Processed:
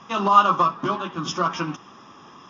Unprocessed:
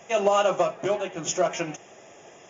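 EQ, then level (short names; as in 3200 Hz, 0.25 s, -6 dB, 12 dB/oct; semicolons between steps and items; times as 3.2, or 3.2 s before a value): EQ curve 130 Hz 0 dB, 260 Hz +6 dB, 380 Hz -7 dB, 670 Hz -15 dB, 1100 Hz +12 dB, 2100 Hz -11 dB, 3700 Hz +2 dB, 5200 Hz +1 dB, 7700 Hz -26 dB; +5.0 dB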